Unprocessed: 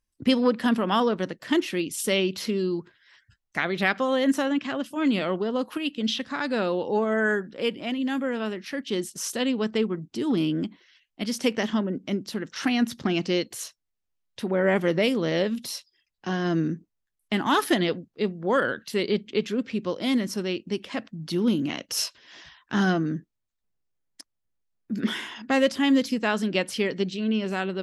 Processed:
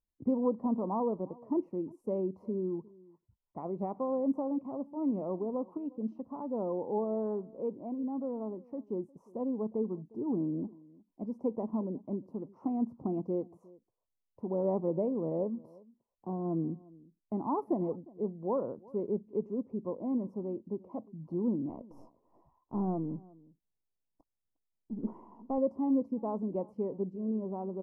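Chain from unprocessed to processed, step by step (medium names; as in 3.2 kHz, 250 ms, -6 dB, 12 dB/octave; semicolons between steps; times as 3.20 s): 21.69–25.58 s: partial rectifier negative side -3 dB; elliptic low-pass 1 kHz, stop band 40 dB; echo from a far wall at 61 m, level -23 dB; trim -7.5 dB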